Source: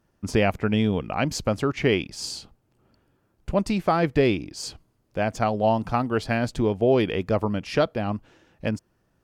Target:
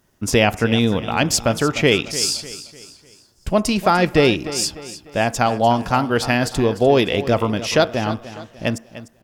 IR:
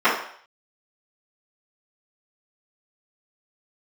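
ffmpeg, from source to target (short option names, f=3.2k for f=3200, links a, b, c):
-filter_complex "[0:a]highshelf=f=2.9k:g=10.5,asetrate=46722,aresample=44100,atempo=0.943874,aecho=1:1:299|598|897|1196:0.188|0.0772|0.0317|0.013,asplit=2[a][b];[1:a]atrim=start_sample=2205[c];[b][c]afir=irnorm=-1:irlink=0,volume=-37.5dB[d];[a][d]amix=inputs=2:normalize=0,volume=4.5dB"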